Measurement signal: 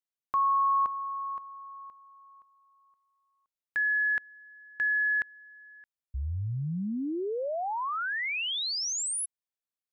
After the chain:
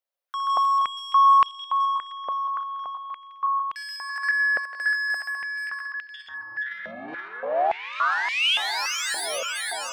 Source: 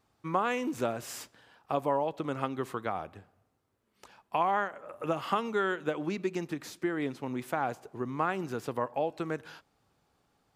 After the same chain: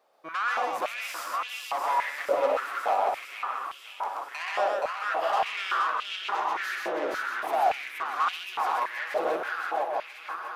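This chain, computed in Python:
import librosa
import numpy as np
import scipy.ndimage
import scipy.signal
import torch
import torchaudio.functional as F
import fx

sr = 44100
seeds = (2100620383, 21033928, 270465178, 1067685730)

y = fx.reverse_delay_fb(x, sr, ms=495, feedback_pct=71, wet_db=-7)
y = fx.peak_eq(y, sr, hz=7500.0, db=-6.0, octaves=0.71)
y = 10.0 ** (-31.5 / 20.0) * np.tanh(y / 10.0 ** (-31.5 / 20.0))
y = fx.echo_multitap(y, sr, ms=(62, 131, 149, 474, 637), db=(-10.5, -3.0, -14.0, -3.5, -12.5))
y = fx.filter_held_highpass(y, sr, hz=3.5, low_hz=570.0, high_hz=2900.0)
y = y * 10.0 ** (2.5 / 20.0)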